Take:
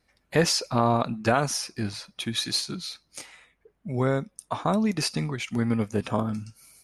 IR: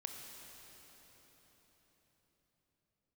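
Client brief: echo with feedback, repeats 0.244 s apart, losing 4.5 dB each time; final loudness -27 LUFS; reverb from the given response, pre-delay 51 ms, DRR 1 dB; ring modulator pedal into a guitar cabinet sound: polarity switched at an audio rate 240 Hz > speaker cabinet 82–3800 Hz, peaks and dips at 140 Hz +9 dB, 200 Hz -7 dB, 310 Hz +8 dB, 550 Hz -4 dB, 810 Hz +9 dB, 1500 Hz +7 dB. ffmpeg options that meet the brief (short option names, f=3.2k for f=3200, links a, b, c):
-filter_complex "[0:a]aecho=1:1:244|488|732|976|1220|1464|1708|1952|2196:0.596|0.357|0.214|0.129|0.0772|0.0463|0.0278|0.0167|0.01,asplit=2[a][b];[1:a]atrim=start_sample=2205,adelay=51[c];[b][c]afir=irnorm=-1:irlink=0,volume=1dB[d];[a][d]amix=inputs=2:normalize=0,aeval=exprs='val(0)*sgn(sin(2*PI*240*n/s))':c=same,highpass=82,equalizer=f=140:t=q:w=4:g=9,equalizer=f=200:t=q:w=4:g=-7,equalizer=f=310:t=q:w=4:g=8,equalizer=f=550:t=q:w=4:g=-4,equalizer=f=810:t=q:w=4:g=9,equalizer=f=1.5k:t=q:w=4:g=7,lowpass=f=3.8k:w=0.5412,lowpass=f=3.8k:w=1.3066,volume=-7dB"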